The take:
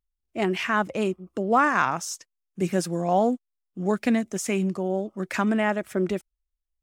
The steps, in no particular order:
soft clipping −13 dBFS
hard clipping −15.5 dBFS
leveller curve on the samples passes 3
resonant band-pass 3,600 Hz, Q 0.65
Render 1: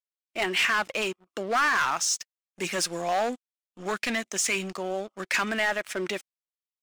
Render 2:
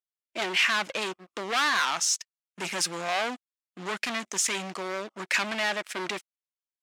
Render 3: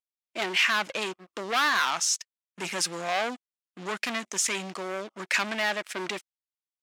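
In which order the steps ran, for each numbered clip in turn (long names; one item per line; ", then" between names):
hard clipping, then soft clipping, then resonant band-pass, then leveller curve on the samples
leveller curve on the samples, then hard clipping, then resonant band-pass, then soft clipping
leveller curve on the samples, then soft clipping, then resonant band-pass, then hard clipping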